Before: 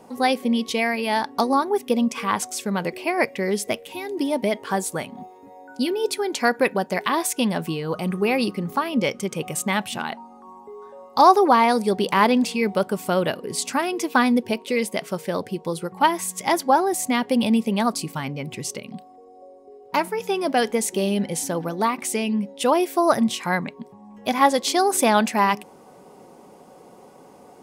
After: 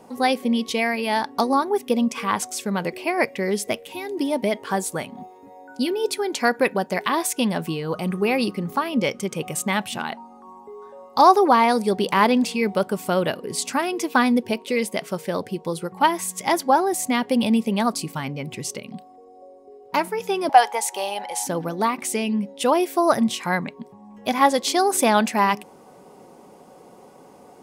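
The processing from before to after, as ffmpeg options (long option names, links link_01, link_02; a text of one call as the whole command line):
ffmpeg -i in.wav -filter_complex "[0:a]asettb=1/sr,asplit=3[link_01][link_02][link_03];[link_01]atrim=end=20.494[link_04];[link_02]atrim=start=20.49:end=21.47,asetpts=PTS-STARTPTS,afade=type=in:duration=0.004:curve=qsin,afade=type=out:start_time=0.976:duration=0.004:curve=qsin,highpass=frequency=840:width_type=q:width=7.2[link_05];[link_03]atrim=start=21.466[link_06];[link_04][link_05]acrossfade=duration=0.004:curve1=hsin:curve2=qsin[link_07];[link_07][link_06]acrossfade=duration=0.004:curve1=qsin:curve2=hsin" out.wav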